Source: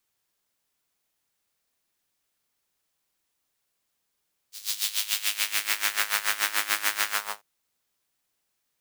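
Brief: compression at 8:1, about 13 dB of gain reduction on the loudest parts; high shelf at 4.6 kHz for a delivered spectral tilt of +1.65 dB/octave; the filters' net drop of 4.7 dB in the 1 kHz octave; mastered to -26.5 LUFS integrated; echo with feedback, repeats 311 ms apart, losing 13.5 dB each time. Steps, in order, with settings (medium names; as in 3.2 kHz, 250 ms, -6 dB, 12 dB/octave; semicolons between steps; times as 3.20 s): peaking EQ 1 kHz -6 dB; treble shelf 4.6 kHz -5 dB; compression 8:1, threshold -37 dBFS; feedback delay 311 ms, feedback 21%, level -13.5 dB; trim +14 dB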